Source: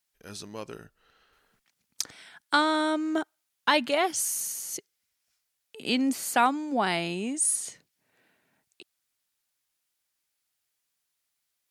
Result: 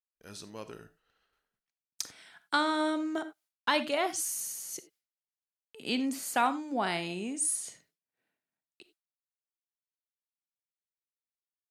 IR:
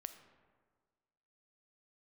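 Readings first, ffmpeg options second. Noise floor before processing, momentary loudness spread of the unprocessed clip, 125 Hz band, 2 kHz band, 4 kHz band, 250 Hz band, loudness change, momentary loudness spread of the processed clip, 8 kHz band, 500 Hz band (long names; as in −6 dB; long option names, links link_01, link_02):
−80 dBFS, 16 LU, −5.0 dB, −4.5 dB, −4.5 dB, −4.5 dB, −4.5 dB, 16 LU, −4.5 dB, −4.5 dB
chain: -filter_complex "[0:a]agate=range=-33dB:threshold=-58dB:ratio=3:detection=peak[link_01];[1:a]atrim=start_sample=2205,afade=type=out:start_time=0.15:duration=0.01,atrim=end_sample=7056[link_02];[link_01][link_02]afir=irnorm=-1:irlink=0"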